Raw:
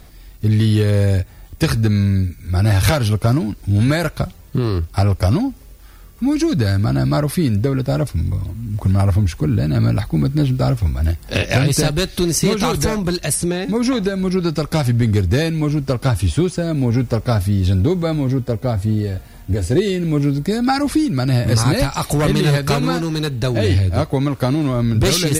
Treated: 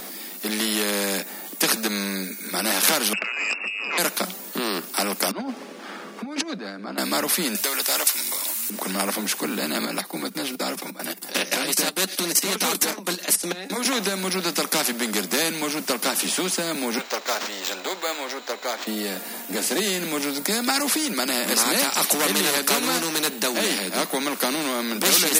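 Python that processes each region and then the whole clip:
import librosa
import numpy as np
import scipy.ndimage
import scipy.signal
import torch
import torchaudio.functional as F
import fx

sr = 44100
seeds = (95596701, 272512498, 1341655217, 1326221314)

y = fx.chain(x, sr, fx.freq_invert(carrier_hz=2700),
    fx.over_compress(threshold_db=-23.0, ratio=-1.0),
    fx.transformer_sat(knee_hz=920.0), at=(3.13, 3.98))
y = fx.chain(y, sr, fx.spacing_loss(db_at_10k=25),
    fx.over_compress(threshold_db=-23.0, ratio=-0.5), at=(5.31, 6.98))
y = fx.chain(y, sr, fx.highpass(hz=620.0, slope=12),
    fx.tilt_eq(slope=4.0),
    fx.transformer_sat(knee_hz=1800.0), at=(7.55, 8.7))
y = fx.chain(y, sr, fx.level_steps(step_db=19),
    fx.notch_comb(f0_hz=220.0), at=(9.85, 13.85))
y = fx.chain(y, sr, fx.highpass(hz=540.0, slope=24),
    fx.resample_linear(factor=4), at=(16.98, 18.87))
y = scipy.signal.sosfilt(scipy.signal.butter(16, 190.0, 'highpass', fs=sr, output='sos'), y)
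y = fx.high_shelf(y, sr, hz=9600.0, db=10.5)
y = fx.spectral_comp(y, sr, ratio=2.0)
y = y * 10.0 ** (1.0 / 20.0)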